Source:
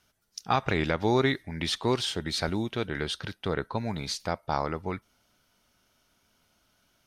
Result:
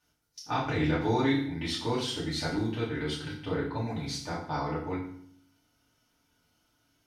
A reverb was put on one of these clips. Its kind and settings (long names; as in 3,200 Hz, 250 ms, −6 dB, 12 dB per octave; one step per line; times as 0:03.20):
feedback delay network reverb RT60 0.6 s, low-frequency decay 1.5×, high-frequency decay 0.9×, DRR −7.5 dB
level −11.5 dB